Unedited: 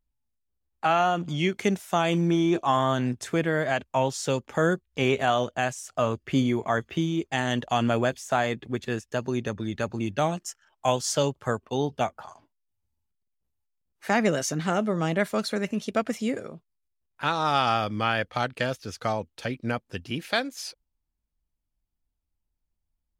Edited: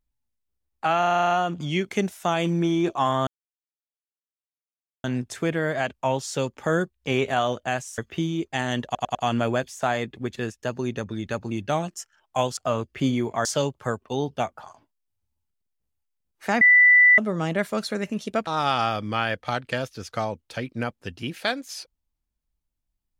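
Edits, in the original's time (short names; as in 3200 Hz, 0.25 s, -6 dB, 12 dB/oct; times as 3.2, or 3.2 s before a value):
0.99 stutter 0.04 s, 9 plays
2.95 insert silence 1.77 s
5.89–6.77 move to 11.06
7.64 stutter 0.10 s, 4 plays
14.22–14.79 bleep 1980 Hz -11 dBFS
16.08–17.35 cut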